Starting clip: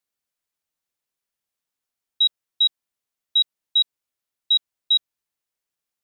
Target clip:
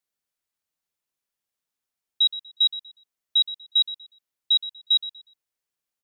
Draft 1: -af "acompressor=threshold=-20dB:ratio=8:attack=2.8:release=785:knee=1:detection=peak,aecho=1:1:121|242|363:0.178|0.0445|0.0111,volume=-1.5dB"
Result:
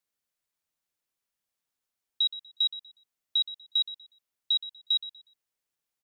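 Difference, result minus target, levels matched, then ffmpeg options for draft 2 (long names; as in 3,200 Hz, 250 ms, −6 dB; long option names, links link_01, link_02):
downward compressor: peak gain reduction +6.5 dB
-af "aecho=1:1:121|242|363:0.178|0.0445|0.0111,volume=-1.5dB"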